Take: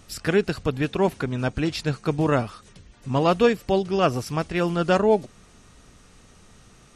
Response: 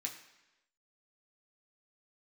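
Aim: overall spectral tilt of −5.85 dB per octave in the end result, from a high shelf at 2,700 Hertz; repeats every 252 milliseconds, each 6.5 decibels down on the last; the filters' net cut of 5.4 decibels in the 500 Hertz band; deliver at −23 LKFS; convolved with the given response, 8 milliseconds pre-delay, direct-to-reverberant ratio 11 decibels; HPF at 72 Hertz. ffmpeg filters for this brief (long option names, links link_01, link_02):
-filter_complex "[0:a]highpass=72,equalizer=frequency=500:width_type=o:gain=-6.5,highshelf=frequency=2700:gain=-6,aecho=1:1:252|504|756|1008|1260|1512:0.473|0.222|0.105|0.0491|0.0231|0.0109,asplit=2[link_01][link_02];[1:a]atrim=start_sample=2205,adelay=8[link_03];[link_02][link_03]afir=irnorm=-1:irlink=0,volume=-10dB[link_04];[link_01][link_04]amix=inputs=2:normalize=0,volume=3dB"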